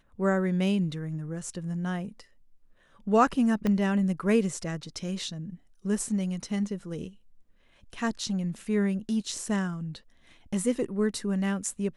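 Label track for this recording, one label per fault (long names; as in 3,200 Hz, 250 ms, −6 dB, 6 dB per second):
3.670000	3.670000	click −16 dBFS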